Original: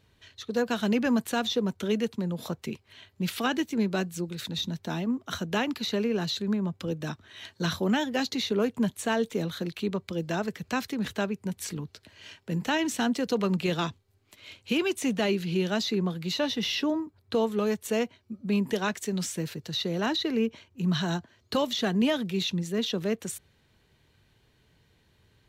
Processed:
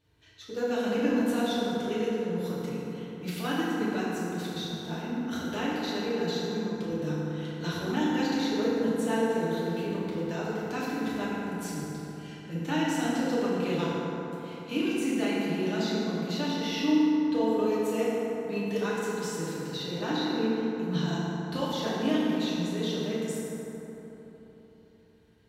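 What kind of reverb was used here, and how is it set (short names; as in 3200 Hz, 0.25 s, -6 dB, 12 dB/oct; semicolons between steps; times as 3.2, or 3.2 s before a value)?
FDN reverb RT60 3.8 s, high-frequency decay 0.4×, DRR -9 dB; gain -11 dB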